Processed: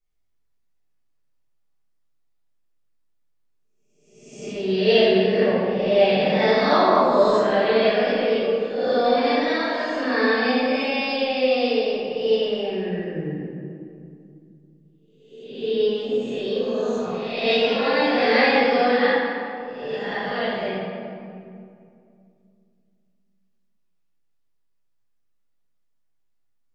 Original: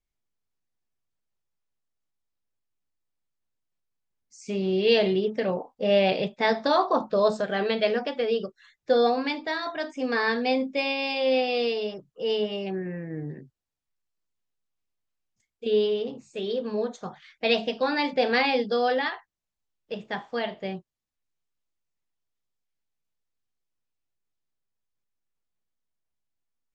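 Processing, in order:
peak hold with a rise ahead of every peak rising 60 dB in 0.88 s
convolution reverb RT60 2.4 s, pre-delay 6 ms, DRR −11.5 dB
level −9 dB

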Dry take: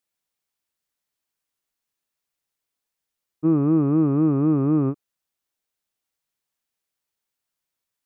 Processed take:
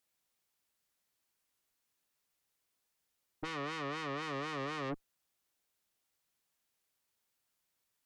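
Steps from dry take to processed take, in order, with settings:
0:03.50–0:04.23: low-pass filter 1,500 Hz
soft clipping −26.5 dBFS, distortion −7 dB
harmonic generator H 4 −24 dB, 7 −13 dB, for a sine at −13.5 dBFS
level +6.5 dB

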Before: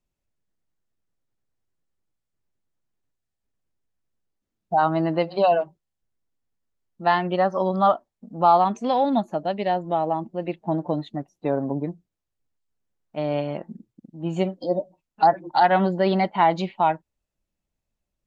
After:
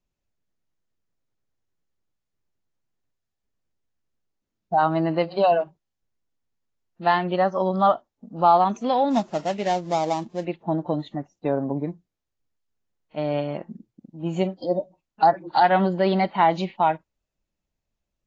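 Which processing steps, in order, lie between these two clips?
0:09.11–0:10.45: gap after every zero crossing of 0.12 ms
AAC 32 kbit/s 16,000 Hz

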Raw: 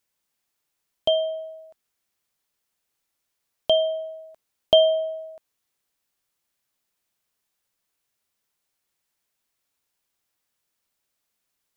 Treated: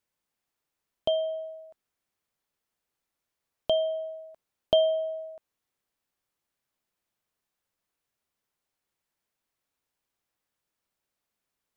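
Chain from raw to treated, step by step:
high-shelf EQ 2,400 Hz −7.5 dB
in parallel at −1.5 dB: downward compressor, threshold −28 dBFS, peak gain reduction 14.5 dB
on the sum: level −6.5 dB

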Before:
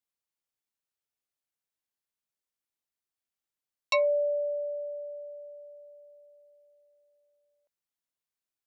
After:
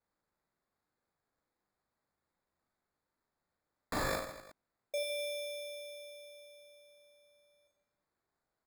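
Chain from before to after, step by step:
0:04.15–0:04.94: Butterworth high-pass 1,900 Hz 48 dB per octave
comb filter 1.7 ms, depth 55%
decimation without filtering 15×
wrap-around overflow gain 30 dB
reverse bouncing-ball delay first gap 40 ms, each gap 1.3×, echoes 5

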